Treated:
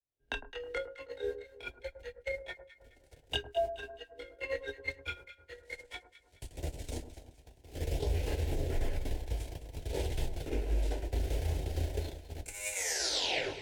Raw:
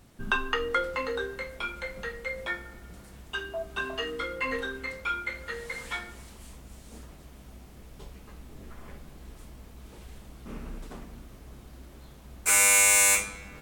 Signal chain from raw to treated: tape stop at the end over 0.90 s; recorder AGC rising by 53 dB/s; chorus voices 2, 0.3 Hz, delay 25 ms, depth 3.6 ms; high shelf 6400 Hz -9 dB; notches 50/100/150/200/250/300/350 Hz; gate -24 dBFS, range -40 dB; frequency shift +17 Hz; compressor 4:1, threshold -26 dBFS, peak gain reduction 6 dB; fixed phaser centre 490 Hz, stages 4; echo with dull and thin repeats by turns 0.106 s, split 1300 Hz, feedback 61%, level -10.5 dB

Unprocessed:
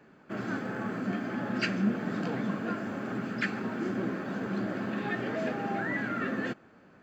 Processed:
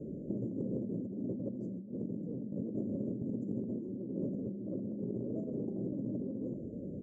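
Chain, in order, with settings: Chebyshev band-stop 570–6800 Hz, order 5; low shelf 390 Hz +7.5 dB; negative-ratio compressor -40 dBFS, ratio -1; air absorption 180 m; on a send: echo 0.412 s -20 dB; on the sum: gain +2 dB

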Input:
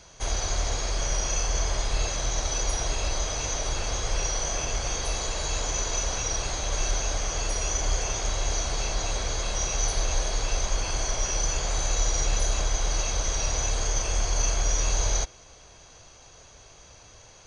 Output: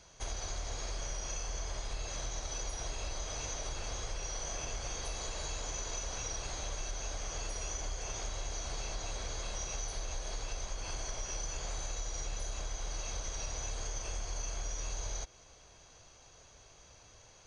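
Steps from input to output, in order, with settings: compressor, threshold -27 dBFS, peak gain reduction 8 dB; gain -7.5 dB

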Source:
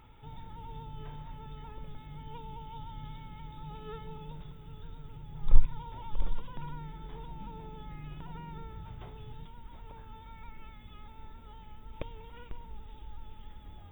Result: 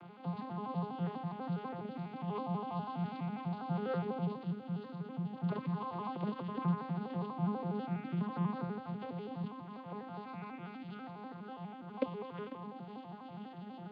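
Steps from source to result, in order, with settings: arpeggiated vocoder minor triad, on F3, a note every 82 ms; gain +9.5 dB

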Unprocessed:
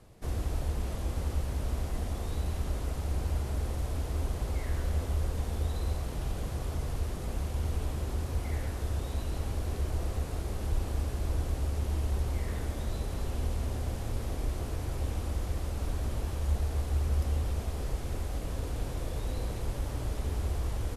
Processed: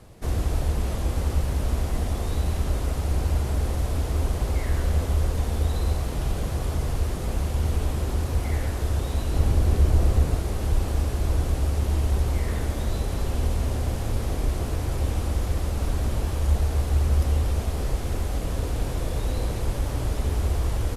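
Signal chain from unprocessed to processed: 9.34–10.35 low shelf 390 Hz +5.5 dB; gain +7.5 dB; Opus 64 kbps 48000 Hz

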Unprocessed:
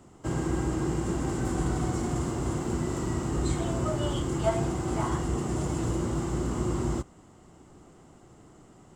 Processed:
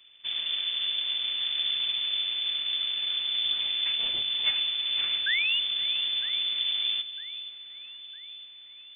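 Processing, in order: full-wave rectifier; painted sound fall, 5.26–5.6, 550–2000 Hz -24 dBFS; on a send: echo with dull and thin repeats by turns 0.478 s, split 1100 Hz, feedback 67%, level -13 dB; on the sum: inverted band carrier 3500 Hz; gain -4 dB

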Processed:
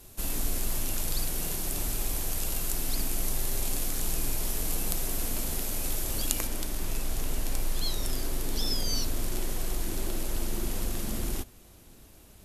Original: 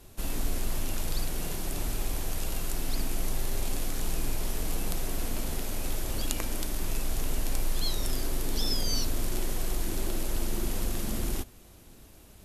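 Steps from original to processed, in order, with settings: high shelf 5600 Hz +9 dB, from 6.47 s +2 dB; gain -1 dB

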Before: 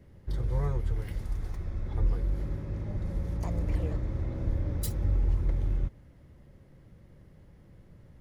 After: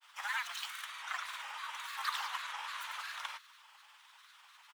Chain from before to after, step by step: elliptic high-pass 670 Hz, stop band 70 dB; outdoor echo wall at 180 m, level -28 dB; speed mistake 45 rpm record played at 78 rpm; grains, pitch spread up and down by 3 st; gain +13.5 dB

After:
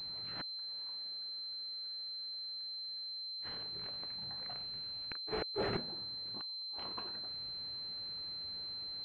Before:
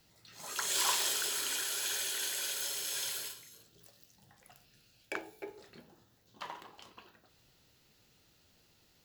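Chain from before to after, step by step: flipped gate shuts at -37 dBFS, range -41 dB; 5.13–5.77 sample leveller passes 5; pulse-width modulation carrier 4100 Hz; gain +9.5 dB

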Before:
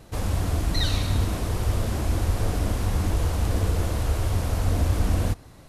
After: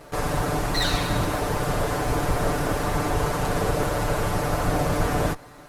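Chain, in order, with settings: minimum comb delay 6.8 ms; EQ curve 200 Hz 0 dB, 530 Hz +9 dB, 1500 Hz +10 dB, 3100 Hz +3 dB

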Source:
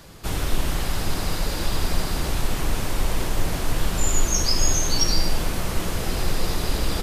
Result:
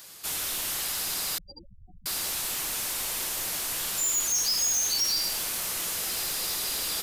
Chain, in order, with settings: 1.38–2.06 spectral gate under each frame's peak -15 dB strong; tilt +4.5 dB/oct; soft clip -15.5 dBFS, distortion -9 dB; gain -7 dB

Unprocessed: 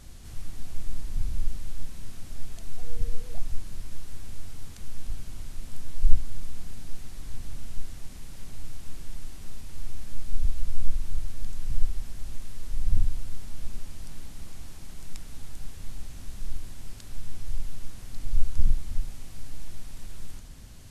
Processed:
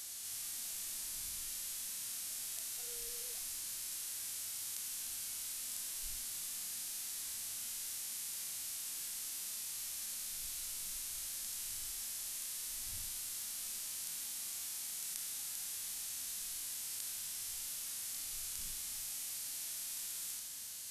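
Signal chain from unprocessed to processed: differentiator; harmonic-percussive split percussive -17 dB; gain +16.5 dB

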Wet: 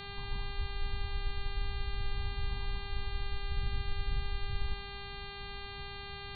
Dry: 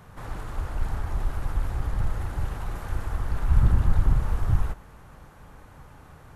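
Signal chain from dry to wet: elliptic band-stop 250–800 Hz, stop band 40 dB; tilt -2 dB/oct; reverse; compressor 5:1, threshold -25 dBFS, peak gain reduction 19.5 dB; reverse; brick-wall FIR low-pass 1100 Hz; buzz 400 Hz, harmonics 11, -39 dBFS -1 dB/oct; gain -6.5 dB

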